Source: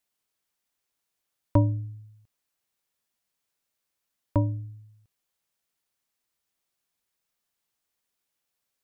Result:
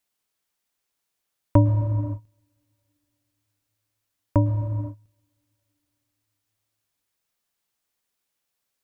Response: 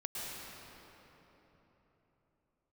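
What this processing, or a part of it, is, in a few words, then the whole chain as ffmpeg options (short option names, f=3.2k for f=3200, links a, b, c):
keyed gated reverb: -filter_complex "[0:a]asplit=3[a][b][c];[1:a]atrim=start_sample=2205[d];[b][d]afir=irnorm=-1:irlink=0[e];[c]apad=whole_len=389592[f];[e][f]sidechaingate=range=-34dB:threshold=-52dB:ratio=16:detection=peak,volume=-6.5dB[g];[a][g]amix=inputs=2:normalize=0,volume=2dB"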